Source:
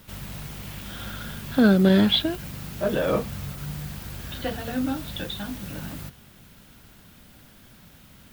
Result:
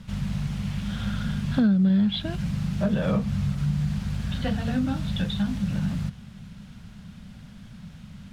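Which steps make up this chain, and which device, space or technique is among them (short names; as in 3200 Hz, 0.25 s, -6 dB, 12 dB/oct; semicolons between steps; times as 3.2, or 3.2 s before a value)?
jukebox (LPF 6700 Hz 12 dB/oct; resonant low shelf 250 Hz +7.5 dB, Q 3; compressor 5:1, threshold -20 dBFS, peak gain reduction 15.5 dB)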